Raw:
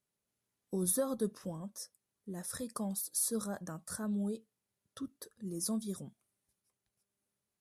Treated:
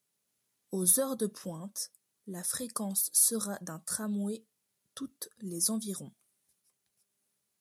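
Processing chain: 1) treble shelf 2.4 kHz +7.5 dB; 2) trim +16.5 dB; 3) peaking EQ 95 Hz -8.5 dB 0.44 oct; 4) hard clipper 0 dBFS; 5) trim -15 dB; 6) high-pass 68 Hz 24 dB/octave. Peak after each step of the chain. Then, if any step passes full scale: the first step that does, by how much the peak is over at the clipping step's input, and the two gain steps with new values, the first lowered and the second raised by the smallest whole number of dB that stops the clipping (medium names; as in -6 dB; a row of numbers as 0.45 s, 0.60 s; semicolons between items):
-12.5 dBFS, +4.0 dBFS, +4.0 dBFS, 0.0 dBFS, -15.0 dBFS, -14.5 dBFS; step 2, 4.0 dB; step 2 +12.5 dB, step 5 -11 dB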